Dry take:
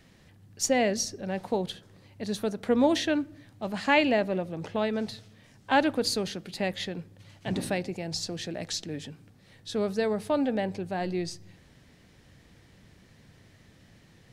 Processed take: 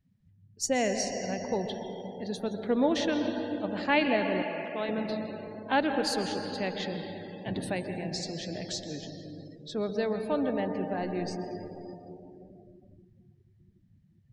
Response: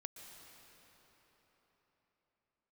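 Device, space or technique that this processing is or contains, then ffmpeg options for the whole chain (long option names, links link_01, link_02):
cathedral: -filter_complex "[1:a]atrim=start_sample=2205[link_01];[0:a][link_01]afir=irnorm=-1:irlink=0,asettb=1/sr,asplit=3[link_02][link_03][link_04];[link_02]atrim=end=4.424[link_05];[link_03]atrim=start=4.42:end=4.89,asetpts=PTS-STARTPTS,afade=type=in:duration=0.004:curve=qsin,afade=type=out:start_time=0.466:duration=0.004:curve=qsin,highpass=frequency=480:poles=1[link_06];[link_04]atrim=start=4.886[link_07];[link_05][link_06]acrossfade=duration=0.004:curve1=hsin:curve2=qsin[link_08];[link_08][link_07]acrossfade=duration=0.004:curve1=qsin:curve2=hsin,afftdn=noise_reduction=26:noise_floor=-50,volume=2.5dB"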